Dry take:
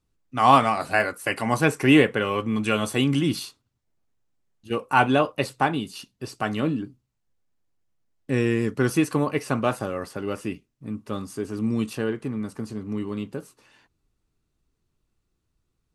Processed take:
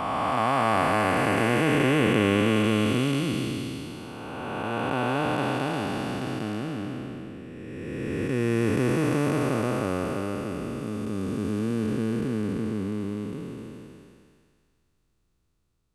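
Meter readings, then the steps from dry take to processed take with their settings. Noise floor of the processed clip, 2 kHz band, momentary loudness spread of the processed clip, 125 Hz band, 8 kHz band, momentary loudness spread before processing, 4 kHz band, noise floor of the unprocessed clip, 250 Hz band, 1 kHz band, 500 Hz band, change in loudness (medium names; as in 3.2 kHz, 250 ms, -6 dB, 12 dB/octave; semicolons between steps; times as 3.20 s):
-71 dBFS, -2.5 dB, 15 LU, +0.5 dB, -2.5 dB, 17 LU, -2.0 dB, -76 dBFS, -0.5 dB, -3.5 dB, -1.0 dB, -2.5 dB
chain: spectral blur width 1100 ms; trim +4.5 dB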